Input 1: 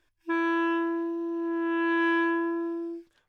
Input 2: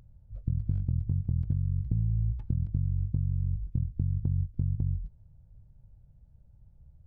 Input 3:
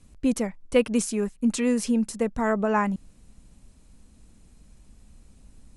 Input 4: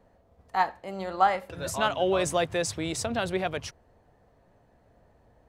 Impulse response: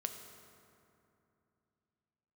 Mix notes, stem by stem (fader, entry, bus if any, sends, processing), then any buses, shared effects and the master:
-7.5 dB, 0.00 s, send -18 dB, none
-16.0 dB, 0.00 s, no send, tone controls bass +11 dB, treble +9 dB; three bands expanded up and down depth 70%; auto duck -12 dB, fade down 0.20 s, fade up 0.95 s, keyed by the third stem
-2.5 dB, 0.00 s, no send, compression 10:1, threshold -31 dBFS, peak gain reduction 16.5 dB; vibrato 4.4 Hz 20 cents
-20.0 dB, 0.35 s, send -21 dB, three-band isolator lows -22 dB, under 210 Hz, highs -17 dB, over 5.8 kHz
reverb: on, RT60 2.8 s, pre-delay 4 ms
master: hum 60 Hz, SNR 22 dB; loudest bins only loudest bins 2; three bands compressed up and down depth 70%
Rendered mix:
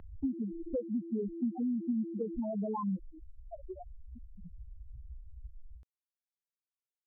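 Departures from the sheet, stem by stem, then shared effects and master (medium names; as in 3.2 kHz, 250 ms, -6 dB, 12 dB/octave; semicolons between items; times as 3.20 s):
stem 1 -7.5 dB -> -14.5 dB; stem 2: muted; stem 3 -2.5 dB -> +4.0 dB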